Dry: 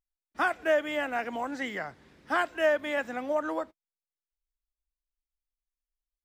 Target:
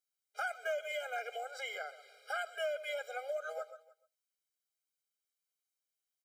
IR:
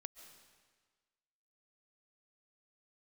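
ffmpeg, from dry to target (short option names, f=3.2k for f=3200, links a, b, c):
-filter_complex "[0:a]asettb=1/sr,asplit=3[a][b][c];[a]atrim=end=1.324[d];[b]atrim=start=1.32:end=3.34,asetpts=PTS-STARTPTS,afade=t=in:d=0.004:c=qsin,afade=t=out:st=2.016:d=0.004:c=qsin,bandreject=f=6.3k:w=12[e];[c]atrim=start=3.336[f];[d][e]acrossfade=d=0.004:c1=hsin:c2=qsin[g];[g][f]acrossfade=d=0.004:c1=qsin:c2=hsin[h];[1:a]atrim=start_sample=2205,atrim=end_sample=6174,asetrate=43218,aresample=44100[i];[h][i]afir=irnorm=-1:irlink=0,acompressor=threshold=-45dB:ratio=2.5,highshelf=f=2.4k:g=10,aecho=1:1:302:0.0668,afftfilt=real='re*eq(mod(floor(b*sr/1024/410),2),1)':imag='im*eq(mod(floor(b*sr/1024/410),2),1)':win_size=1024:overlap=0.75,volume=5.5dB"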